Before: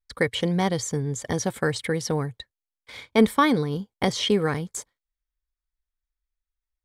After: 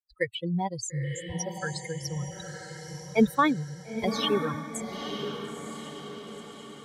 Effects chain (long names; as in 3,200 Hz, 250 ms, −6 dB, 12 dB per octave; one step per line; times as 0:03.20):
spectral dynamics exaggerated over time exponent 3
feedback delay with all-pass diffusion 937 ms, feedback 52%, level −7 dB